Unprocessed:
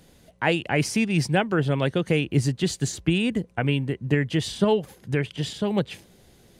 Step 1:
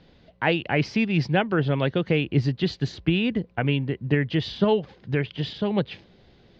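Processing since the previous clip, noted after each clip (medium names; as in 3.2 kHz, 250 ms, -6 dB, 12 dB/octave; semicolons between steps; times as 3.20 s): steep low-pass 4.7 kHz 36 dB/octave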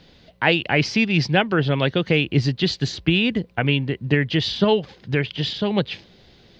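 treble shelf 3.1 kHz +11.5 dB; trim +2.5 dB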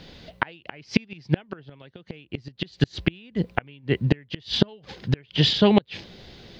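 inverted gate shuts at -11 dBFS, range -33 dB; trim +5.5 dB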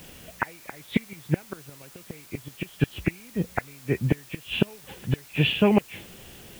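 knee-point frequency compression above 1.7 kHz 1.5:1; word length cut 8-bit, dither triangular; trim -2 dB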